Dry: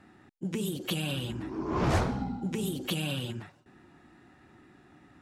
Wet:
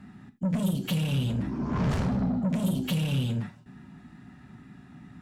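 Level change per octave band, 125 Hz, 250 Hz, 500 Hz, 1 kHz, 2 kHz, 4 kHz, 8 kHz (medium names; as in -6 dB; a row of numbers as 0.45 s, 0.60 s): +6.5 dB, +5.5 dB, -2.0 dB, -3.0 dB, -2.0 dB, -1.5 dB, -2.0 dB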